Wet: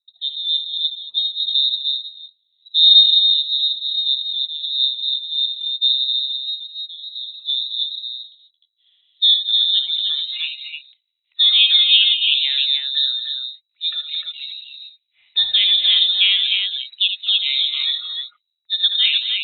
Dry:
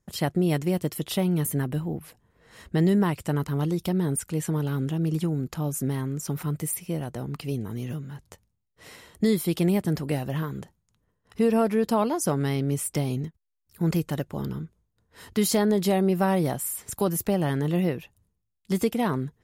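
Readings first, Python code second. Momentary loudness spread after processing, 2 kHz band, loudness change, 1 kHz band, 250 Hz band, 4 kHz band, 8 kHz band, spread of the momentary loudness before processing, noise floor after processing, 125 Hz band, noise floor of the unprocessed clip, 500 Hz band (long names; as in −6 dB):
17 LU, +10.0 dB, +11.0 dB, below −20 dB, below −40 dB, +29.0 dB, below −40 dB, 11 LU, −74 dBFS, below −40 dB, −76 dBFS, below −35 dB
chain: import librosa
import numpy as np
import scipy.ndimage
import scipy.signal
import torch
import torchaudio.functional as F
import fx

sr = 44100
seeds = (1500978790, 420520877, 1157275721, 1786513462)

p1 = fx.noise_reduce_blind(x, sr, reduce_db=17)
p2 = fx.high_shelf(p1, sr, hz=2400.0, db=-6.0)
p3 = fx.filter_sweep_lowpass(p2, sr, from_hz=260.0, to_hz=1500.0, start_s=6.75, end_s=10.74, q=2.2)
p4 = p3 + fx.echo_multitap(p3, sr, ms=(59, 75, 221, 303), db=(-15.0, -8.5, -13.0, -4.0), dry=0)
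p5 = fx.freq_invert(p4, sr, carrier_hz=3900)
y = F.gain(torch.from_numpy(p5), 6.5).numpy()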